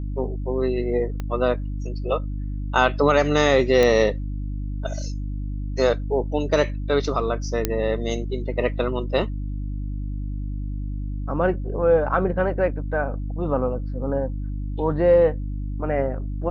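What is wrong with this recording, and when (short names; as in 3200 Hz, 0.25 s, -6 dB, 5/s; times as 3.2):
hum 50 Hz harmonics 6 -28 dBFS
1.2 pop -17 dBFS
3.83 pop -8 dBFS
7.65 pop -6 dBFS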